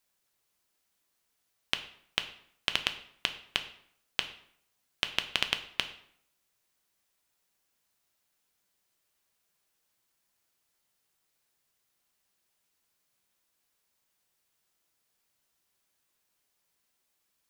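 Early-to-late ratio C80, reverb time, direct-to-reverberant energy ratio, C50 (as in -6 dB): 15.0 dB, 0.65 s, 7.5 dB, 12.5 dB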